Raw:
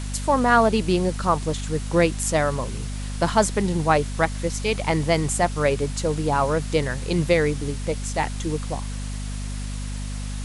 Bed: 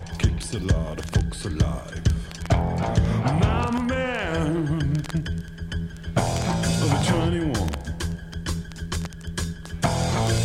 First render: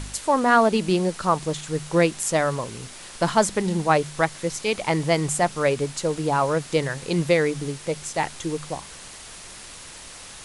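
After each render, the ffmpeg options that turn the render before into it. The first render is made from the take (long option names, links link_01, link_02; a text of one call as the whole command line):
ffmpeg -i in.wav -af "bandreject=frequency=50:width_type=h:width=4,bandreject=frequency=100:width_type=h:width=4,bandreject=frequency=150:width_type=h:width=4,bandreject=frequency=200:width_type=h:width=4,bandreject=frequency=250:width_type=h:width=4" out.wav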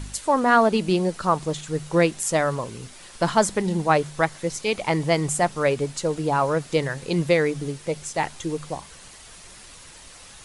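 ffmpeg -i in.wav -af "afftdn=noise_reduction=6:noise_floor=-42" out.wav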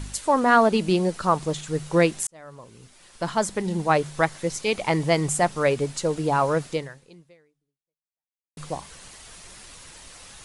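ffmpeg -i in.wav -filter_complex "[0:a]asplit=3[link_01][link_02][link_03];[link_01]atrim=end=2.27,asetpts=PTS-STARTPTS,afade=type=out:start_time=2.266:duration=0.004:curve=hsin[link_04];[link_02]atrim=start=2.27:end=8.57,asetpts=PTS-STARTPTS,afade=type=in:duration=1.91,afade=type=out:start_time=4.39:duration=1.91:curve=exp[link_05];[link_03]atrim=start=8.57,asetpts=PTS-STARTPTS,afade=type=in:duration=0.004:curve=hsin[link_06];[link_04][link_05][link_06]concat=n=3:v=0:a=1" out.wav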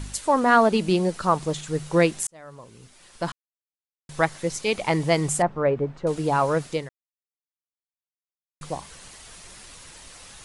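ffmpeg -i in.wav -filter_complex "[0:a]asettb=1/sr,asplit=3[link_01][link_02][link_03];[link_01]atrim=end=5.424[link_04];[link_02]atrim=start=5.42:end=6.07,asetpts=PTS-STARTPTS,afade=type=in:duration=0.004:curve=qsin,afade=type=out:start_time=0.646:duration=0.004:curve=qsin,lowpass=1300[link_05];[link_03]atrim=start=6.066[link_06];[link_04][link_05]acrossfade=duration=0.004:curve1=hsin:curve2=qsin[link_07];[link_07][link_06]acrossfade=duration=0.004:curve1=qsin:curve2=hsin,asplit=5[link_08][link_09][link_10][link_11][link_12];[link_08]atrim=end=3.32,asetpts=PTS-STARTPTS,afade=type=out:start_time=3.316:duration=0.004:curve=hsin[link_13];[link_09]atrim=start=3.32:end=4.09,asetpts=PTS-STARTPTS,volume=0[link_14];[link_10]atrim=start=4.09:end=6.89,asetpts=PTS-STARTPTS,afade=type=in:duration=0.004:curve=hsin,afade=type=out:start_time=2.796:duration=0.004:curve=hsin[link_15];[link_11]atrim=start=6.89:end=8.61,asetpts=PTS-STARTPTS,volume=0[link_16];[link_12]atrim=start=8.61,asetpts=PTS-STARTPTS,afade=type=in:duration=0.004:curve=hsin[link_17];[link_13][link_14][link_15][link_16][link_17]concat=n=5:v=0:a=1" out.wav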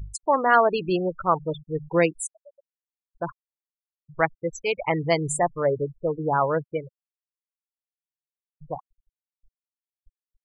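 ffmpeg -i in.wav -af "afftfilt=real='re*gte(hypot(re,im),0.0708)':imag='im*gte(hypot(re,im),0.0708)':win_size=1024:overlap=0.75,equalizer=frequency=220:width=2.7:gain=-12" out.wav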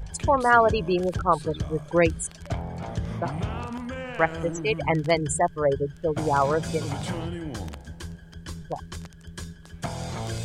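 ffmpeg -i in.wav -i bed.wav -filter_complex "[1:a]volume=-9.5dB[link_01];[0:a][link_01]amix=inputs=2:normalize=0" out.wav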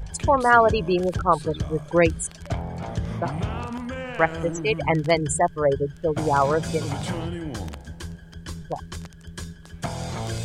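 ffmpeg -i in.wav -af "volume=2dB" out.wav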